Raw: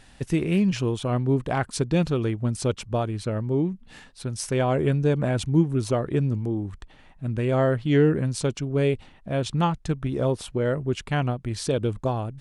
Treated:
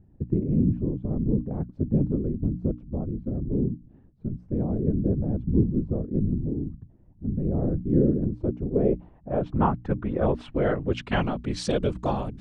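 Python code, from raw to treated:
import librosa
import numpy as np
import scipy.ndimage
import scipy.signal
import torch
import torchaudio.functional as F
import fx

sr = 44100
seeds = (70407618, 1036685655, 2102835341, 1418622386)

y = fx.whisperise(x, sr, seeds[0])
y = fx.filter_sweep_lowpass(y, sr, from_hz=280.0, to_hz=6100.0, start_s=7.96, end_s=11.66, q=0.94)
y = fx.hum_notches(y, sr, base_hz=60, count=5)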